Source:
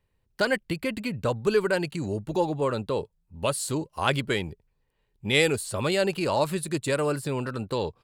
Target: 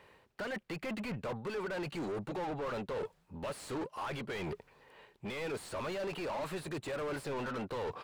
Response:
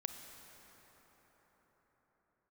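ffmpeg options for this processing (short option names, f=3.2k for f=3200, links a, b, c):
-filter_complex "[0:a]lowshelf=f=220:g=-6.5,alimiter=limit=-17.5dB:level=0:latency=1:release=248,areverse,acompressor=threshold=-41dB:ratio=6,areverse,asplit=2[a][b];[b]highpass=f=720:p=1,volume=32dB,asoftclip=type=tanh:threshold=-31dB[c];[a][c]amix=inputs=2:normalize=0,lowpass=f=1.3k:p=1,volume=-6dB,volume=1dB"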